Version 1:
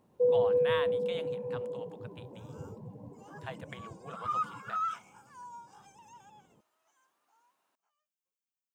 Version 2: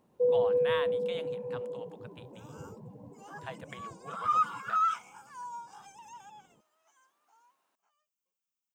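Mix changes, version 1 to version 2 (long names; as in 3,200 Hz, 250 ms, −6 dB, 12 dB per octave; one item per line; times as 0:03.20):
first sound: send −7.5 dB
second sound +5.5 dB
master: add parametric band 97 Hz −4.5 dB 0.73 octaves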